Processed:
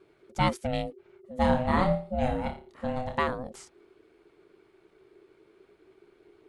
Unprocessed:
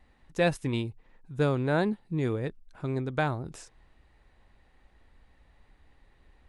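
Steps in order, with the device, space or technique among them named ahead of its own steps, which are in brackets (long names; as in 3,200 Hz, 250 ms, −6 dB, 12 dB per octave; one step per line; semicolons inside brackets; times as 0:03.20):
0:01.37–0:03.17: flutter between parallel walls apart 4.9 metres, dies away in 0.36 s
alien voice (ring modulation 380 Hz; flanger 0.47 Hz, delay 0.2 ms, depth 1.9 ms, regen −82%)
level +7 dB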